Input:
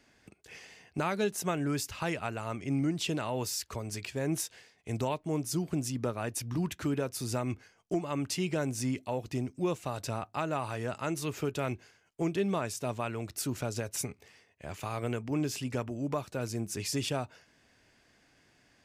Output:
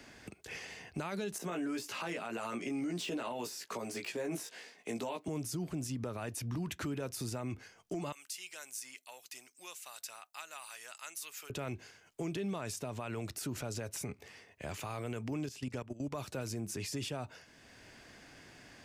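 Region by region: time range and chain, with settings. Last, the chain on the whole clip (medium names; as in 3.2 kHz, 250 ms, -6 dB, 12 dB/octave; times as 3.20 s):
1.38–5.28 s: high-pass 210 Hz 24 dB/octave + de-esser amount 95% + doubling 17 ms -3 dB
8.12–11.50 s: high-pass 1.1 kHz 6 dB/octave + differentiator
15.46–16.15 s: treble shelf 12 kHz -8 dB + level held to a coarse grid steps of 18 dB
whole clip: peak limiter -31 dBFS; three bands compressed up and down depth 40%; trim +1 dB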